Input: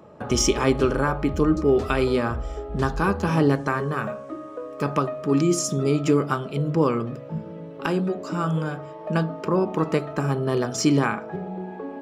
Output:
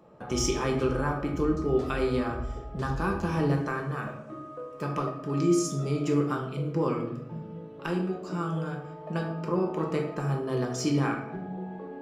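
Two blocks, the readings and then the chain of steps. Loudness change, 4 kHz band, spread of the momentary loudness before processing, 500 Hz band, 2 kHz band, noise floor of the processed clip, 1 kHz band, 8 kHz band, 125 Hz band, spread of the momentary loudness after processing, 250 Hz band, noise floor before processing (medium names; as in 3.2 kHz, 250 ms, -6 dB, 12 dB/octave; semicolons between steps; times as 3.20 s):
-6.0 dB, -7.0 dB, 13 LU, -6.0 dB, -6.5 dB, -43 dBFS, -6.0 dB, -7.5 dB, -4.5 dB, 12 LU, -5.5 dB, -39 dBFS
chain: simulated room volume 170 m³, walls mixed, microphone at 0.83 m; trim -9 dB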